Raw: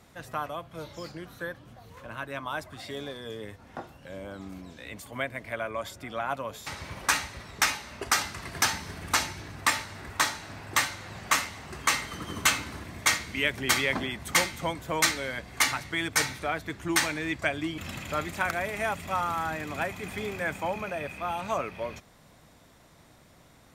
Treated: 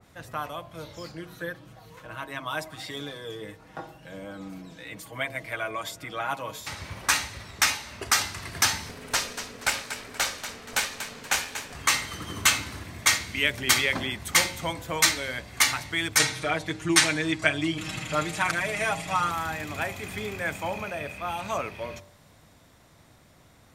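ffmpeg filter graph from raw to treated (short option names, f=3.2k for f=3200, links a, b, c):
-filter_complex "[0:a]asettb=1/sr,asplit=3[a][b][c];[a]atrim=end=1.174[d];[b]atrim=start=1.17:end=6.6,asetpts=PTS-STARTPTS,afade=t=in:d=0.004:c=qsin,afade=t=out:st=5.426:d=0.004:c=qsin,equalizer=f=89:w=1.6:g=-5,aecho=1:1:6.3:0.68,atrim=end_sample=239463[e];[c]atrim=start=6.596[f];[d][e]acrossfade=d=0.004:c1=hsin:c2=qsin[g];[g][f]acrossfade=d=0.004:c1=qsin:c2=hsin,asettb=1/sr,asplit=3[h][i][j];[h]atrim=end=8.894[k];[i]atrim=start=8.89:end=11.75,asetpts=PTS-STARTPTS,afade=t=in:d=0.004:c=qsin,afade=t=out:st=2.856:d=0.004:c=qsin,aeval=exprs='val(0)*sin(2*PI*340*n/s)':c=same,asplit=5[l][m][n][o][p];[m]adelay=238,afreqshift=51,volume=-10.5dB[q];[n]adelay=476,afreqshift=102,volume=-19.4dB[r];[o]adelay=714,afreqshift=153,volume=-28.2dB[s];[p]adelay=952,afreqshift=204,volume=-37.1dB[t];[l][q][r][s][t]amix=inputs=5:normalize=0,atrim=end_sample=126126[u];[j]atrim=start=11.746[v];[k][u]acrossfade=d=0.004:c1=hsin:c2=qsin[w];[w][v]acrossfade=d=0.004:c1=qsin:c2=hsin,asettb=1/sr,asplit=3[x][y][z];[x]atrim=end=16.194[aa];[y]atrim=start=16.19:end=19.31,asetpts=PTS-STARTPTS,afade=t=in:d=0.004:c=qsin,afade=t=out:st=3.116:d=0.004:c=qsin,lowpass=f=11k:w=0.5412,lowpass=f=11k:w=1.3066,aecho=1:1:6.4:0.94,atrim=end_sample=137592[ab];[z]atrim=start=19.306[ac];[aa][ab]acrossfade=d=0.004:c1=hsin:c2=qsin[ad];[ad][ac]acrossfade=d=0.004:c1=qsin:c2=hsin,equalizer=f=96:t=o:w=0.6:g=5,bandreject=f=45.06:t=h:w=4,bandreject=f=90.12:t=h:w=4,bandreject=f=135.18:t=h:w=4,bandreject=f=180.24:t=h:w=4,bandreject=f=225.3:t=h:w=4,bandreject=f=270.36:t=h:w=4,bandreject=f=315.42:t=h:w=4,bandreject=f=360.48:t=h:w=4,bandreject=f=405.54:t=h:w=4,bandreject=f=450.6:t=h:w=4,bandreject=f=495.66:t=h:w=4,bandreject=f=540.72:t=h:w=4,bandreject=f=585.78:t=h:w=4,bandreject=f=630.84:t=h:w=4,bandreject=f=675.9:t=h:w=4,bandreject=f=720.96:t=h:w=4,bandreject=f=766.02:t=h:w=4,bandreject=f=811.08:t=h:w=4,bandreject=f=856.14:t=h:w=4,bandreject=f=901.2:t=h:w=4,bandreject=f=946.26:t=h:w=4,bandreject=f=991.32:t=h:w=4,bandreject=f=1.03638k:t=h:w=4,bandreject=f=1.08144k:t=h:w=4,adynamicequalizer=threshold=0.0141:dfrequency=2100:dqfactor=0.7:tfrequency=2100:tqfactor=0.7:attack=5:release=100:ratio=0.375:range=2.5:mode=boostabove:tftype=highshelf"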